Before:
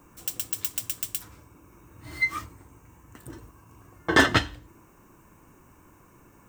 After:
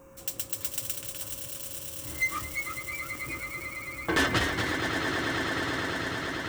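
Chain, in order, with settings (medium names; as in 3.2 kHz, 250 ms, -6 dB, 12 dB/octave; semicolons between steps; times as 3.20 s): 0.97–2.20 s: low-pass 1.6 kHz 6 dB/octave; echo with a slow build-up 110 ms, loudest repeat 8, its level -15 dB; saturation -20.5 dBFS, distortion -7 dB; whistle 540 Hz -52 dBFS; ever faster or slower copies 476 ms, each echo +1 st, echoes 3, each echo -6 dB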